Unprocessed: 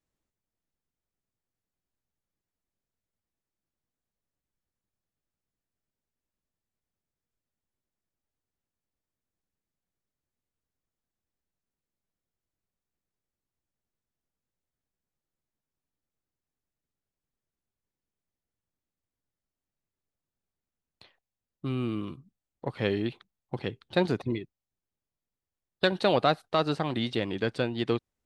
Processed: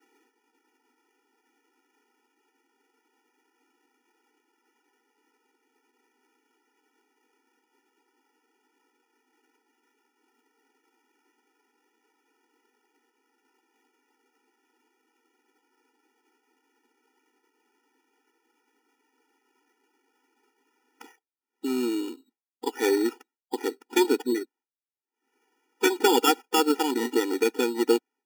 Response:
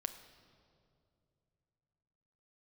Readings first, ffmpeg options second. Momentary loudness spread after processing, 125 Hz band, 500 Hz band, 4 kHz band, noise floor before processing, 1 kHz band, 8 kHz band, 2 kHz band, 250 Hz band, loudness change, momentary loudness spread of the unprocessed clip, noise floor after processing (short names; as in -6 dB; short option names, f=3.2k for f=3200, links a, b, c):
13 LU, under -25 dB, +4.5 dB, +4.0 dB, under -85 dBFS, +4.0 dB, n/a, +3.0 dB, +4.5 dB, +4.0 dB, 12 LU, under -85 dBFS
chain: -filter_complex "[0:a]acrossover=split=4600[a][b];[b]acompressor=threshold=-54dB:ratio=4:attack=1:release=60[c];[a][c]amix=inputs=2:normalize=0,lowshelf=f=140:g=-8,acompressor=mode=upward:threshold=-43dB:ratio=2.5,acrusher=samples=11:mix=1:aa=0.000001,agate=range=-33dB:threshold=-57dB:ratio=3:detection=peak,afftfilt=real='re*eq(mod(floor(b*sr/1024/250),2),1)':imag='im*eq(mod(floor(b*sr/1024/250),2),1)':win_size=1024:overlap=0.75,volume=8.5dB"